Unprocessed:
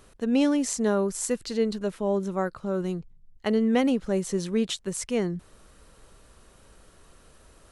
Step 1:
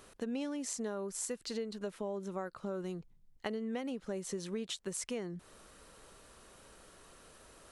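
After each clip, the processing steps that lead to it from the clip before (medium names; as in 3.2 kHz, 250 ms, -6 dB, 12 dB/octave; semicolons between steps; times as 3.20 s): bass shelf 150 Hz -11 dB; compression 6:1, threshold -36 dBFS, peak gain reduction 16 dB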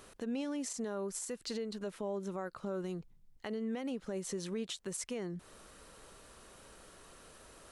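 peak limiter -31 dBFS, peak gain reduction 9.5 dB; trim +1.5 dB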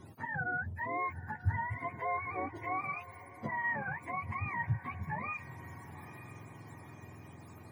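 spectrum inverted on a logarithmic axis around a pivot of 650 Hz; echo that smears into a reverb 925 ms, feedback 54%, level -15 dB; trim +4 dB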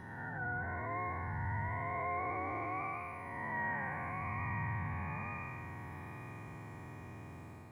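spectral blur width 420 ms; trim +3.5 dB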